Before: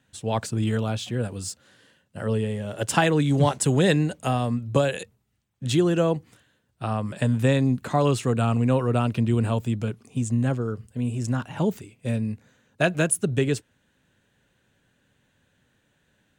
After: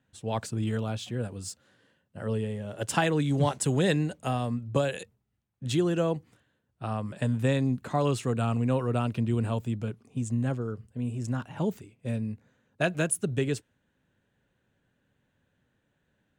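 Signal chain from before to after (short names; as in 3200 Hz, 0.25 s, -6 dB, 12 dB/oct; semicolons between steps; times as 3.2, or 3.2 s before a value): mismatched tape noise reduction decoder only; gain -5 dB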